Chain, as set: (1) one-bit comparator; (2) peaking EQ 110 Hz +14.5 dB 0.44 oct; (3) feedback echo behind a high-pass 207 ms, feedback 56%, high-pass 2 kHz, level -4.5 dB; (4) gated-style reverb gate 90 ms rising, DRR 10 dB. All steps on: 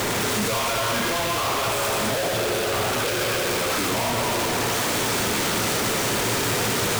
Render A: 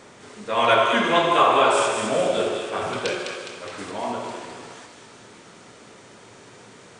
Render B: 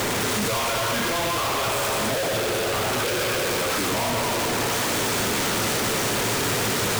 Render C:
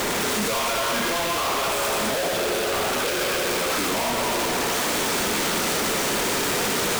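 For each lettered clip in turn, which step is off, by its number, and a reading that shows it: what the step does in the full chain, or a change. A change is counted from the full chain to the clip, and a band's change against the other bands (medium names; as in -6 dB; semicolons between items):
1, crest factor change +8.5 dB; 4, echo-to-direct -5.5 dB to -7.5 dB; 2, 125 Hz band -6.5 dB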